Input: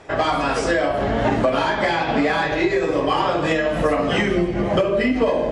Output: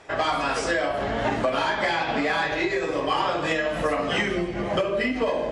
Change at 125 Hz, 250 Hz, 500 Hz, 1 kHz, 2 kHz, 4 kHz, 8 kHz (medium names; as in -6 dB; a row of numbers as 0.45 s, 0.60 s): -8.0 dB, -7.5 dB, -5.5 dB, -4.0 dB, -2.5 dB, -2.0 dB, -1.5 dB